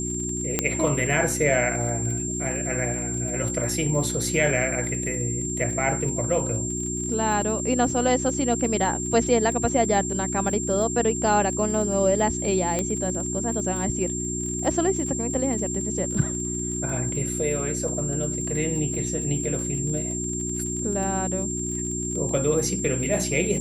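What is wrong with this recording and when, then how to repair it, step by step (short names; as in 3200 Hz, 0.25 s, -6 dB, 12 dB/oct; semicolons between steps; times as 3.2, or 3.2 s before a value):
crackle 28/s -32 dBFS
hum 60 Hz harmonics 6 -31 dBFS
tone 7400 Hz -29 dBFS
0.59 pop -5 dBFS
12.79 pop -12 dBFS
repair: de-click; de-hum 60 Hz, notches 6; notch 7400 Hz, Q 30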